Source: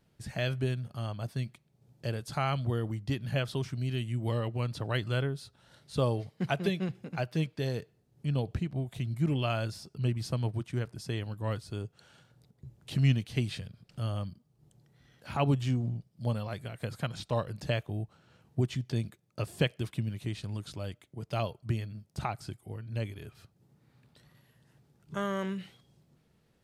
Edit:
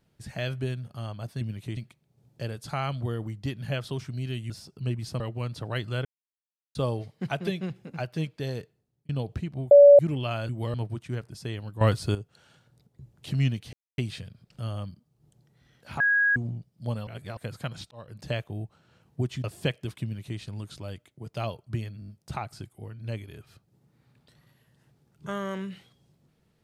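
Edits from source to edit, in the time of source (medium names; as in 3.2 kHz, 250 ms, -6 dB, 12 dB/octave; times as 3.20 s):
4.14–4.39 s: swap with 9.68–10.38 s
5.24–5.94 s: mute
7.76–8.28 s: fade out
8.90–9.18 s: bleep 572 Hz -8.5 dBFS
11.45–11.79 s: gain +11.5 dB
13.37 s: insert silence 0.25 s
15.39–15.75 s: bleep 1.65 kHz -19 dBFS
16.46–16.76 s: reverse
17.30–17.69 s: fade in
18.83–19.40 s: delete
19.99–20.35 s: copy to 1.41 s
21.96 s: stutter 0.02 s, 5 plays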